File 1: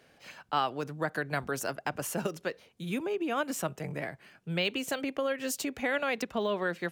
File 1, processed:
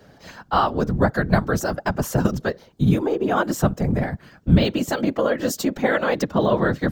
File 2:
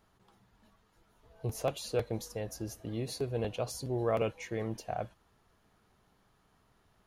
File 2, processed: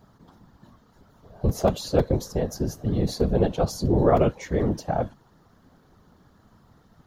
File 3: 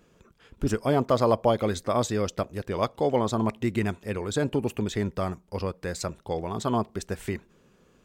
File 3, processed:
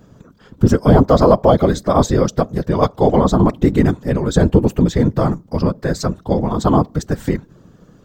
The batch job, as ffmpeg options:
-af "equalizer=f=160:t=o:w=0.67:g=10,equalizer=f=2.5k:t=o:w=0.67:g=-11,equalizer=f=10k:t=o:w=0.67:g=-11,afftfilt=real='hypot(re,im)*cos(2*PI*random(0))':imag='hypot(re,im)*sin(2*PI*random(1))':win_size=512:overlap=0.75,apsyclip=18dB,volume=-1.5dB"

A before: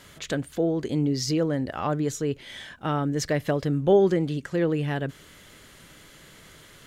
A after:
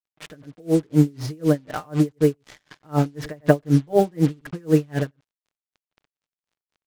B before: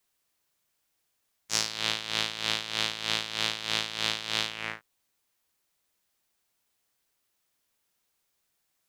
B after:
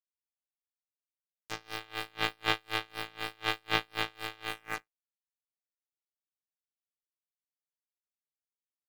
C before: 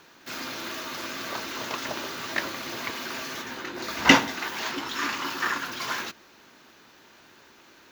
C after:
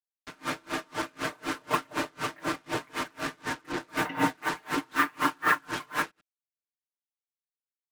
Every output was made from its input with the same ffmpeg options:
-filter_complex "[0:a]lowpass=2k,aecho=1:1:6.6:0.94,acrusher=bits=5:mix=0:aa=0.5,asplit=2[a][b];[b]aecho=0:1:95:0.0841[c];[a][c]amix=inputs=2:normalize=0,aeval=exprs='val(0)*pow(10,-34*(0.5-0.5*cos(2*PI*4*n/s))/20)':c=same,volume=6.5dB"

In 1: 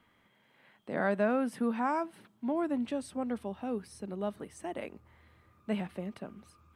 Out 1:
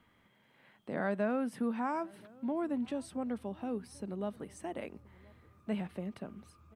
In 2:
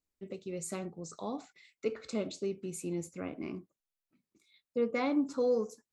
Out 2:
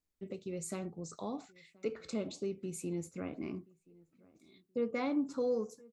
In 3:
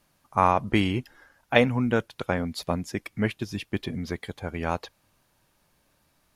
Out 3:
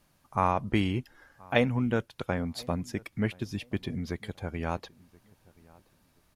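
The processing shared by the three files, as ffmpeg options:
-filter_complex "[0:a]lowshelf=f=240:g=4.5,asplit=2[a][b];[b]acompressor=threshold=-37dB:ratio=6,volume=-1.5dB[c];[a][c]amix=inputs=2:normalize=0,asplit=2[d][e];[e]adelay=1027,lowpass=f=1.5k:p=1,volume=-24dB,asplit=2[f][g];[g]adelay=1027,lowpass=f=1.5k:p=1,volume=0.27[h];[d][f][h]amix=inputs=3:normalize=0,volume=-6.5dB"

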